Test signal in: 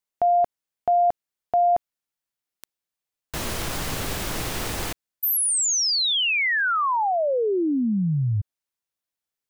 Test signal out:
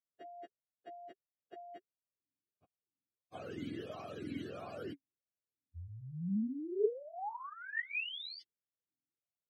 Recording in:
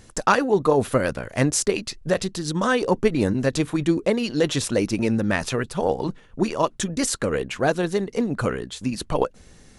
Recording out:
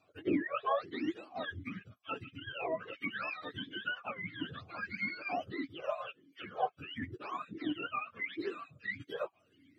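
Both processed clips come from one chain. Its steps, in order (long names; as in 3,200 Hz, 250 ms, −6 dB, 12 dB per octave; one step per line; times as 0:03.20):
frequency axis turned over on the octave scale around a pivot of 700 Hz
formant filter swept between two vowels a-i 1.5 Hz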